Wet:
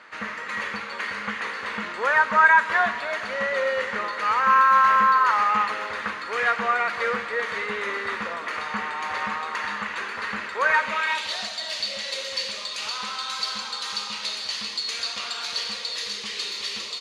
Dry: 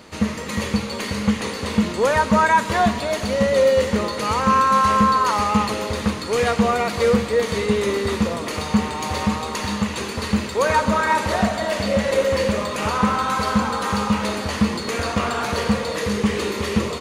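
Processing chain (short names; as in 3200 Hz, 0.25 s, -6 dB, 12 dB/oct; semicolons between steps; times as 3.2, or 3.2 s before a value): band-pass sweep 1600 Hz -> 4300 Hz, 10.66–11.4; gain +6 dB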